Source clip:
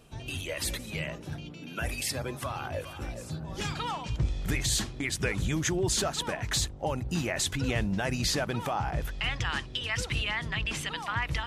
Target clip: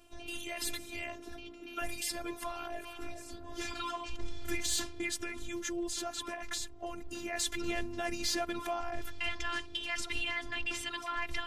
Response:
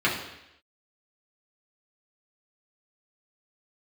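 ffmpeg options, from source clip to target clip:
-filter_complex "[0:a]asettb=1/sr,asplit=3[a][b][c];[a]atrim=end=5.194[d];[b]atrim=start=5.19:end=7.33,asetpts=PTS-STARTPTS,afade=t=in:d=0.004:c=qsin,afade=t=out:st=2.136:d=0.004:c=qsin,acompressor=threshold=-32dB:ratio=3[e];[c]atrim=start=7.326[f];[d][e]acrossfade=d=0.004:c1=hsin:c2=qsin[g];[g][f]acrossfade=d=0.004:c1=qsin:c2=hsin,asoftclip=type=tanh:threshold=-17.5dB,afftfilt=real='hypot(re,im)*cos(PI*b)':imag='0':win_size=512:overlap=0.75"

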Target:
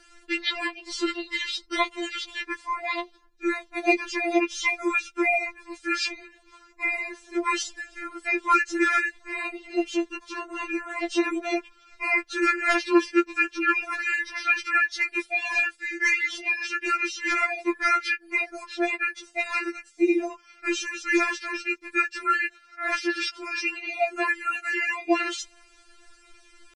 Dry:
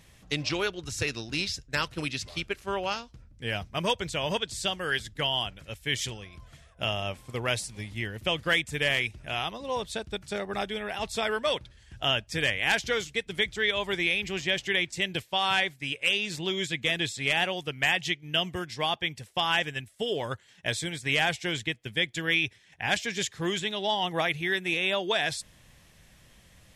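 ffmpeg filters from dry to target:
-af "asetrate=33038,aresample=44100,atempo=1.33484,afftfilt=real='re*4*eq(mod(b,16),0)':imag='im*4*eq(mod(b,16),0)':win_size=2048:overlap=0.75,volume=6dB"

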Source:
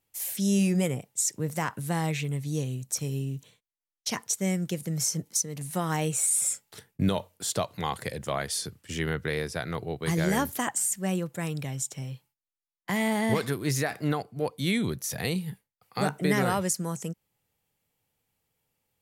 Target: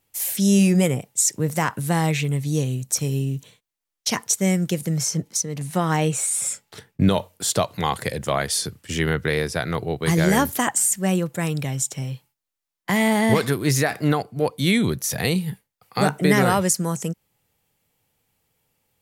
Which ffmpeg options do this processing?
-filter_complex "[0:a]asettb=1/sr,asplit=3[a][b][c];[a]atrim=end=4.964[d];[b]atrim=start=4.96:end=7.11,asetpts=PTS-STARTPTS,afade=t=in:d=0.004:c=qsin,afade=t=out:st=2.146:d=0.004:c=qsin,equalizer=f=13k:w=0.44:g=-8.5[e];[c]atrim=start=7.106[f];[d][e]acrossfade=d=0.004:c1=hsin:c2=qsin[g];[g][f]acrossfade=d=0.004:c1=qsin:c2=hsin,volume=7.5dB"

